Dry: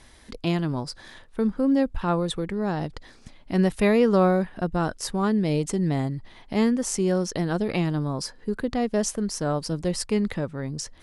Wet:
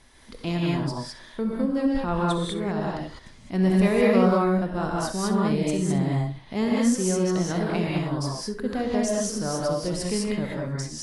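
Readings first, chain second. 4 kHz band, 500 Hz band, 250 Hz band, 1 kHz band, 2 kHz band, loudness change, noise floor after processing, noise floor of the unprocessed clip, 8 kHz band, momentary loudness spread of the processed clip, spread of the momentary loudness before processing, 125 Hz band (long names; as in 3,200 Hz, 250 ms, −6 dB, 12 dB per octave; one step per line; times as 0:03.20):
+0.5 dB, 0.0 dB, +0.5 dB, +1.0 dB, +0.5 dB, +0.5 dB, −48 dBFS, −51 dBFS, +1.0 dB, 10 LU, 11 LU, +1.0 dB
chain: flutter between parallel walls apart 11.1 metres, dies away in 0.28 s
reverb whose tail is shaped and stops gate 230 ms rising, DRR −3.5 dB
level −4.5 dB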